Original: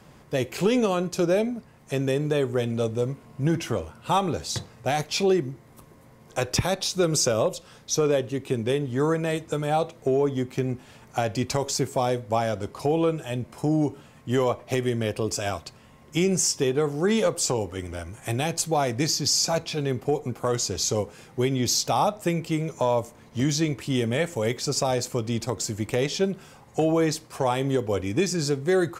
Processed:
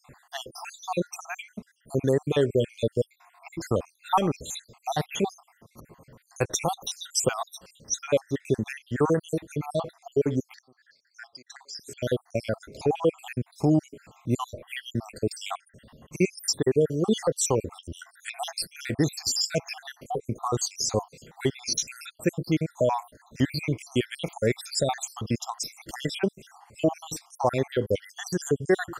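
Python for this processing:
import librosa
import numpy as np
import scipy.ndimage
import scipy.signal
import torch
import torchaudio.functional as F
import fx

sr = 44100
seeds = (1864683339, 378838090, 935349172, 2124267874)

y = fx.spec_dropout(x, sr, seeds[0], share_pct=70)
y = fx.double_bandpass(y, sr, hz=2800.0, octaves=1.4, at=(10.53, 11.79), fade=0.02)
y = y * librosa.db_to_amplitude(2.5)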